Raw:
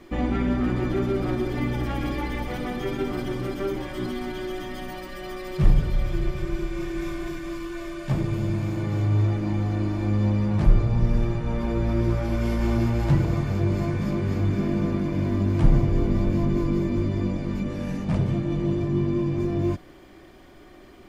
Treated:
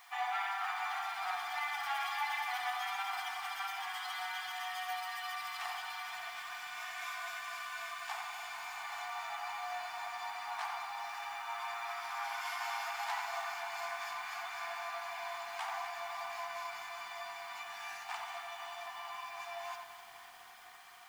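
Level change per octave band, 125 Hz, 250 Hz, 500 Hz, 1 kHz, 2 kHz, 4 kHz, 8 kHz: below −40 dB, below −40 dB, −19.0 dB, 0.0 dB, 0.0 dB, 0.0 dB, can't be measured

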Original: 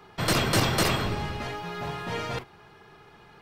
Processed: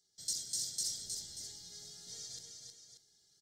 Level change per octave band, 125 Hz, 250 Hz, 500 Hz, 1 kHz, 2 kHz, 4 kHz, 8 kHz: −33.0 dB, −34.0 dB, −34.5 dB, below −40 dB, −36.5 dB, −10.5 dB, −1.5 dB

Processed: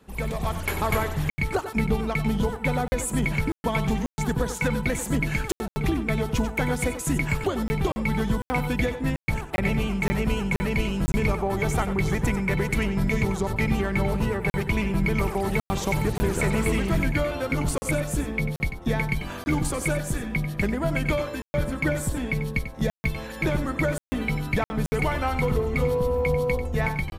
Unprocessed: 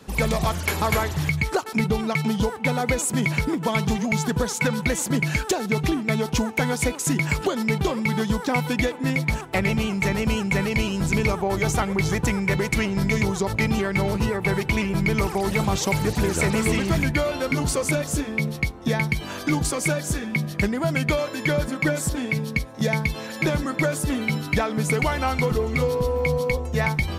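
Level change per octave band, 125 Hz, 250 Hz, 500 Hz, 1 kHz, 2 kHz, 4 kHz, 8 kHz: −1.5, −2.5, −2.0, −2.5, −3.5, −6.0, −6.0 decibels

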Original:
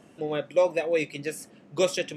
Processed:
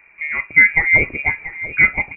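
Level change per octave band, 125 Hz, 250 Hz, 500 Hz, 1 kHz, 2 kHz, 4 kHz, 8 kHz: +9.5 dB, −0.5 dB, −9.5 dB, +4.5 dB, +24.0 dB, below −15 dB, below −40 dB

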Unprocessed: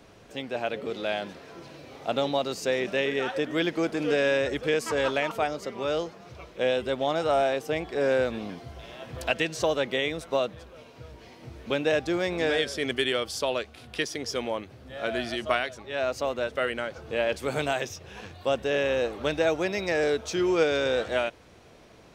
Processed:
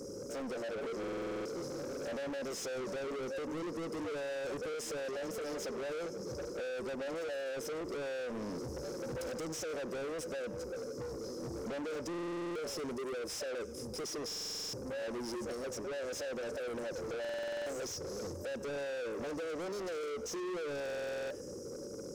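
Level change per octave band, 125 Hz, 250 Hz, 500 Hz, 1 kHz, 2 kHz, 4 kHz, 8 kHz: −10.0, −9.5, −11.0, −14.0, −14.5, −12.5, −3.0 decibels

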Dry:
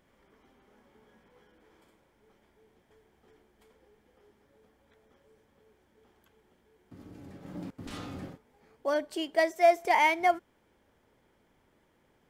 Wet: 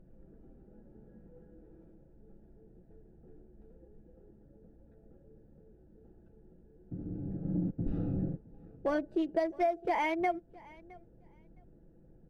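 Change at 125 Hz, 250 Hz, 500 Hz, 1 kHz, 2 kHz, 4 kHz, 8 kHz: +11.0 dB, +4.5 dB, −5.5 dB, −7.0 dB, −9.5 dB, −12.5 dB, below −15 dB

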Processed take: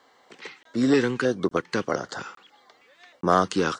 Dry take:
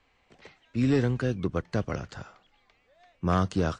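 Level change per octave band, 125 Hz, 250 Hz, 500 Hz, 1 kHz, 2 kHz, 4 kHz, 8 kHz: −6.0 dB, +3.0 dB, +6.5 dB, +8.0 dB, +8.0 dB, +8.5 dB, can't be measured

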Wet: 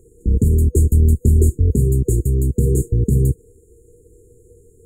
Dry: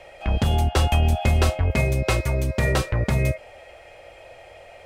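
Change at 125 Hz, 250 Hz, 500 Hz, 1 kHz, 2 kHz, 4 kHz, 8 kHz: +6.5 dB, +6.5 dB, +1.5 dB, below −40 dB, below −40 dB, below −40 dB, +5.0 dB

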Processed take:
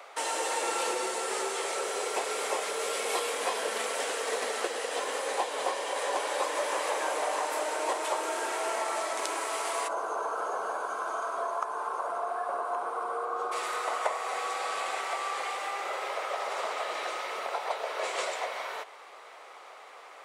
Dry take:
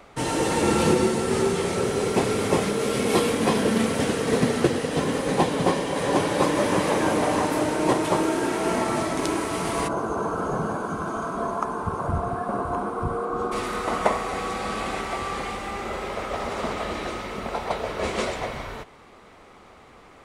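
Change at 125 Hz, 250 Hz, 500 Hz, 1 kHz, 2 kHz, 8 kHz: below −40 dB, −22.5 dB, −8.5 dB, −4.0 dB, −3.5 dB, −2.0 dB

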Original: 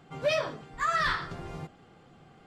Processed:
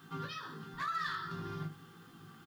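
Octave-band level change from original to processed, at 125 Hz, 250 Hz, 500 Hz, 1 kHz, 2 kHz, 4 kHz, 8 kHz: −2.0, −1.5, −18.0, −7.5, −10.0, −9.5, −12.0 decibels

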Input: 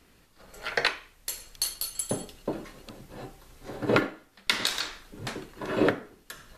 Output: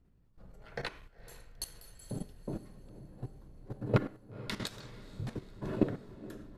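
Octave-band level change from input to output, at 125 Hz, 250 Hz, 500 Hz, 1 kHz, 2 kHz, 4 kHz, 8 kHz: +2.5, −4.5, −9.0, −12.0, −15.5, −15.5, −16.0 decibels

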